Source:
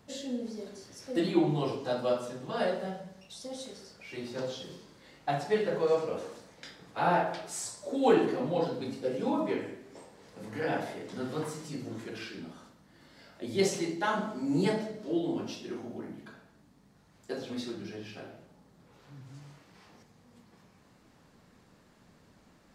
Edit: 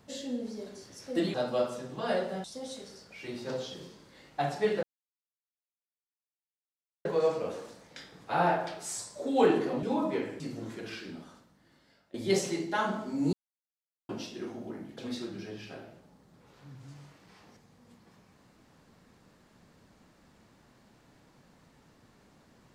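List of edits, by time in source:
1.34–1.85 s: delete
2.95–3.33 s: delete
5.72 s: insert silence 2.22 s
8.50–9.19 s: delete
9.76–11.69 s: delete
12.39–13.43 s: fade out, to -17.5 dB
14.62–15.38 s: mute
16.27–17.44 s: delete

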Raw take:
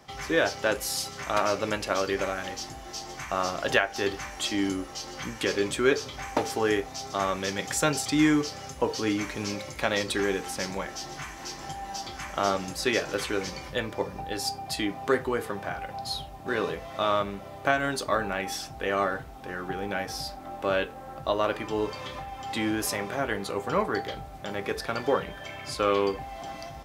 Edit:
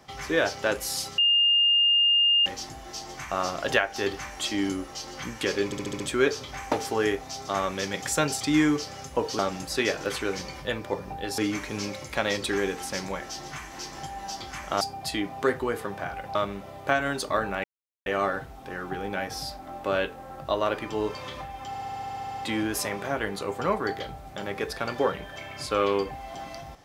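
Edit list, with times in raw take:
1.18–2.46 s: bleep 2.82 kHz -17.5 dBFS
5.65 s: stutter 0.07 s, 6 plays
12.47–14.46 s: move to 9.04 s
16.00–17.13 s: delete
18.42–18.84 s: mute
22.46 s: stutter 0.07 s, 11 plays

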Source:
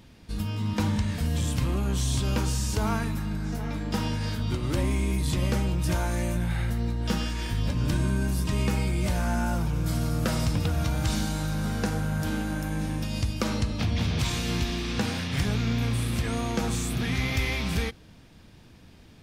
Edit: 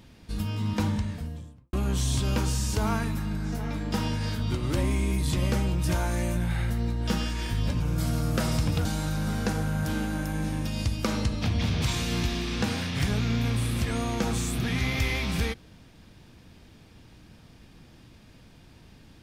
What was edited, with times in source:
0.67–1.73 s: studio fade out
7.80–9.68 s: delete
10.73–11.22 s: delete

